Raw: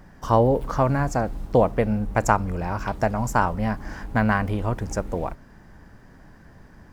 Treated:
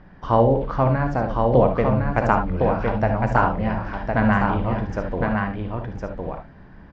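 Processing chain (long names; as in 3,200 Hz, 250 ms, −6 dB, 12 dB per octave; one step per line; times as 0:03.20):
low-pass filter 3,800 Hz 24 dB per octave
on a send: single-tap delay 1,059 ms −4 dB
on the sum: reverb whose tail is shaped and stops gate 90 ms rising, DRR 6 dB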